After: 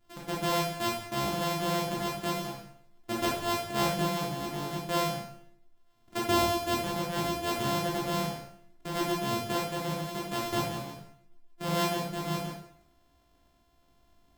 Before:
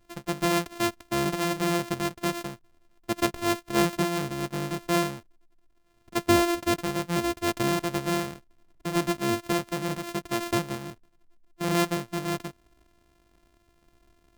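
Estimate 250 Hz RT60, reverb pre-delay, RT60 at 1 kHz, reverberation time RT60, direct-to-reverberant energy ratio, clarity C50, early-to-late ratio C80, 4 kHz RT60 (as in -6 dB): 0.70 s, 7 ms, 0.65 s, 0.65 s, -4.5 dB, 1.5 dB, 6.0 dB, 0.60 s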